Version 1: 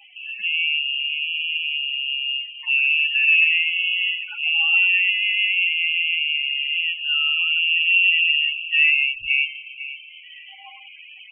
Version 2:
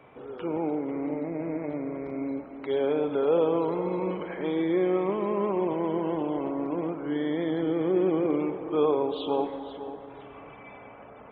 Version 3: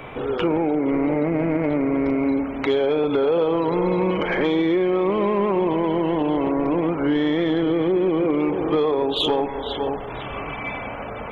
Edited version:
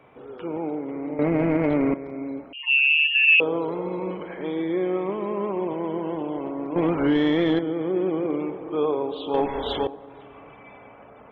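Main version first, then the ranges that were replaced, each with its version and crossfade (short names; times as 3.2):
2
1.19–1.94 from 3
2.53–3.4 from 1
6.76–7.59 from 3
9.34–9.87 from 3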